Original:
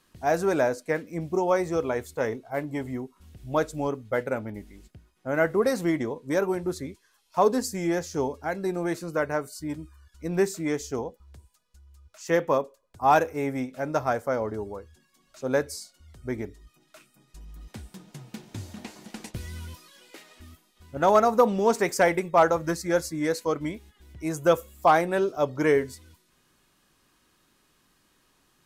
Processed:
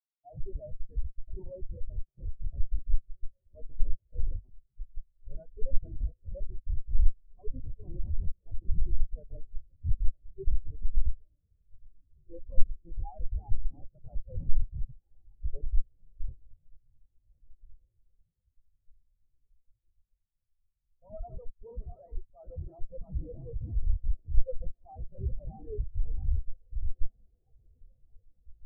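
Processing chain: backward echo that repeats 332 ms, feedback 75%, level -8.5 dB; level-controlled noise filter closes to 3 kHz, open at -18 dBFS; high-pass 730 Hz 12 dB/octave; dynamic bell 2 kHz, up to +5 dB, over -45 dBFS, Q 1.5; in parallel at -1.5 dB: compression 8:1, threshold -33 dBFS, peak gain reduction 18 dB; on the sum: Schmitt trigger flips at -24 dBFS; transient shaper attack -2 dB, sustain +10 dB; tape spacing loss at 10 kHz 39 dB; on a send: echo that smears into a reverb 1996 ms, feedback 75%, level -7.5 dB; on the sum: spectral contrast expander 4:1; trim +9 dB

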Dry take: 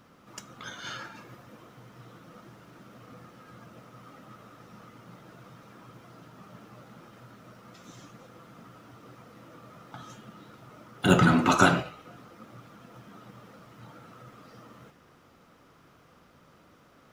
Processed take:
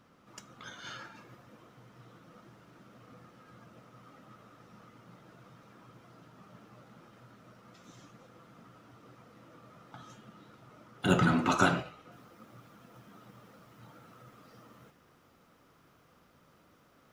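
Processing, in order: treble shelf 11 kHz -5 dB, from 12.12 s +7 dB; trim -5.5 dB

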